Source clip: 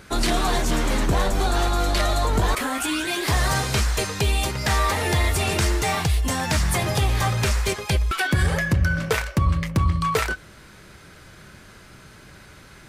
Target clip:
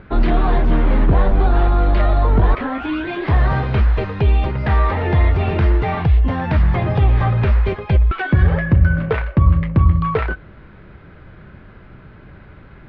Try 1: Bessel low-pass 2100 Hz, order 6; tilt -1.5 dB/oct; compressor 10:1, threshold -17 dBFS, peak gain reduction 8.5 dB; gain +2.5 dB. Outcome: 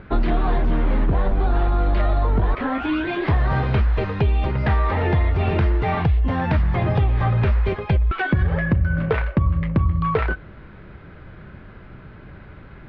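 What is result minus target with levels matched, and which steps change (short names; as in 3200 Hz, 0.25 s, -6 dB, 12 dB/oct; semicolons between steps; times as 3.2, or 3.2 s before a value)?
compressor: peak gain reduction +8.5 dB
remove: compressor 10:1, threshold -17 dBFS, peak gain reduction 8.5 dB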